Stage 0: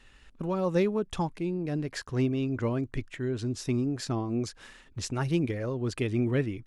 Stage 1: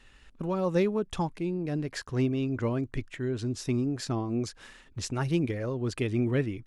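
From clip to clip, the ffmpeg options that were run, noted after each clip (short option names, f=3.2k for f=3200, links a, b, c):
-af anull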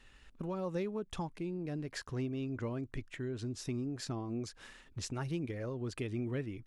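-af "acompressor=threshold=-35dB:ratio=2,volume=-3.5dB"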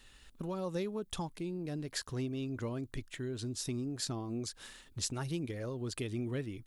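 -af "aexciter=amount=2.4:drive=4.6:freq=3.3k"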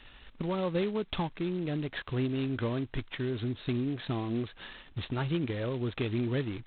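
-af "volume=6dB" -ar 8000 -c:a adpcm_g726 -b:a 16k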